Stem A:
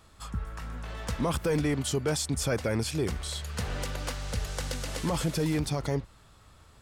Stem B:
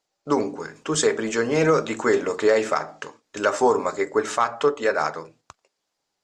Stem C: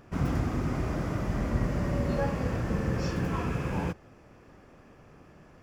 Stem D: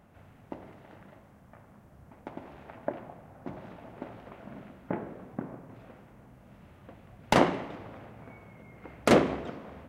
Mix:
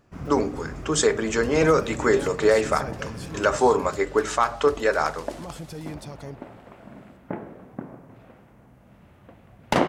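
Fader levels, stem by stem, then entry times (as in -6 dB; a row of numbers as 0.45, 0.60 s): -9.0, 0.0, -7.5, +1.0 dB; 0.35, 0.00, 0.00, 2.40 s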